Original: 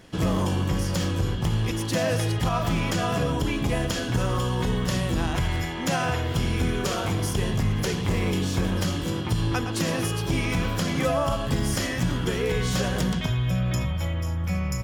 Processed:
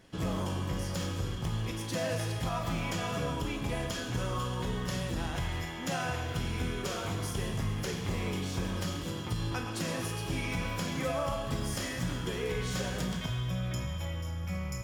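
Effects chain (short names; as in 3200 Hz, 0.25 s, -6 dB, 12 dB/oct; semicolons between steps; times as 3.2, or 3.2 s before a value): on a send: HPF 580 Hz + reverb RT60 1.9 s, pre-delay 7 ms, DRR 3.5 dB; on the sum: gain -9 dB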